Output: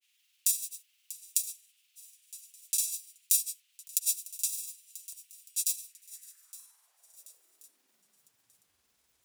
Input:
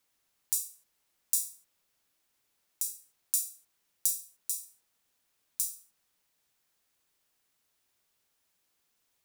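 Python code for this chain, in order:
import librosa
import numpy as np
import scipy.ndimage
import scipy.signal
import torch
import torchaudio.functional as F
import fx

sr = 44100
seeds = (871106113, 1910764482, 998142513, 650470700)

y = fx.filter_sweep_highpass(x, sr, from_hz=2800.0, to_hz=61.0, start_s=5.89, end_s=8.97, q=3.2)
y = fx.echo_swing(y, sr, ms=997, ratio=1.5, feedback_pct=34, wet_db=-16.0)
y = fx.granulator(y, sr, seeds[0], grain_ms=100.0, per_s=20.0, spray_ms=100.0, spread_st=0)
y = y * 10.0 ** (5.5 / 20.0)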